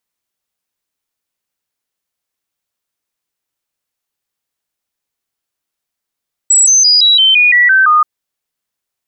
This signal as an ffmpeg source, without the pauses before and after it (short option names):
-f lavfi -i "aevalsrc='0.562*clip(min(mod(t,0.17),0.17-mod(t,0.17))/0.005,0,1)*sin(2*PI*7790*pow(2,-floor(t/0.17)/3)*mod(t,0.17))':d=1.53:s=44100"